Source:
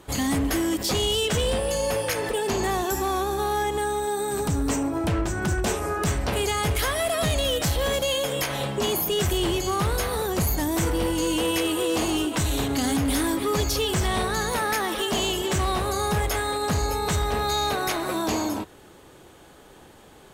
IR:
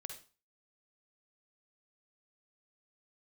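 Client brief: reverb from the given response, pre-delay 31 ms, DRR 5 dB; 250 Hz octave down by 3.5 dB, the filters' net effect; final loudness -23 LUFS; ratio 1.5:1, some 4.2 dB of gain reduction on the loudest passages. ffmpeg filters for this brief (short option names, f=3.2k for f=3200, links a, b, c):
-filter_complex "[0:a]equalizer=f=250:t=o:g=-5,acompressor=threshold=-33dB:ratio=1.5,asplit=2[a][b];[1:a]atrim=start_sample=2205,adelay=31[c];[b][c]afir=irnorm=-1:irlink=0,volume=-1.5dB[d];[a][d]amix=inputs=2:normalize=0,volume=5dB"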